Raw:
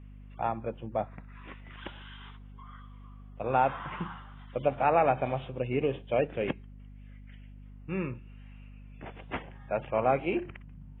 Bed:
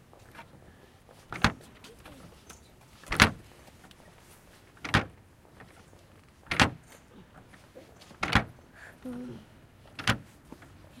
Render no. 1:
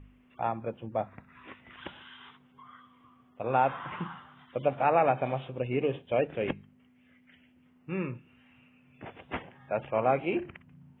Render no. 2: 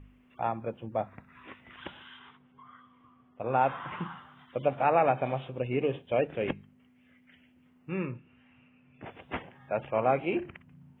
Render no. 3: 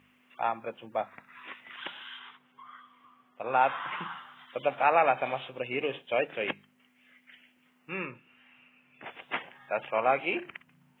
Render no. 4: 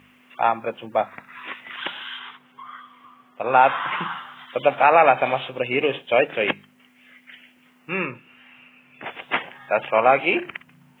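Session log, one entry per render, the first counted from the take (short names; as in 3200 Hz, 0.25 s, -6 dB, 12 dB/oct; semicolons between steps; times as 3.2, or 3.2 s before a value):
de-hum 50 Hz, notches 4
2.19–3.61 air absorption 220 m; 8.05–9.04 air absorption 170 m
HPF 160 Hz 12 dB/oct; tilt shelf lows -8 dB, about 680 Hz
gain +10 dB; limiter -3 dBFS, peak gain reduction 3 dB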